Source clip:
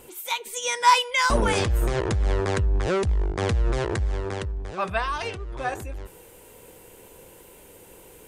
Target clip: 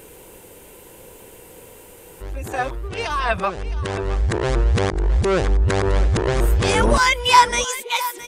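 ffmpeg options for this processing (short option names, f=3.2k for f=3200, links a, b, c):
-af "areverse,aecho=1:1:666:0.188,volume=5dB"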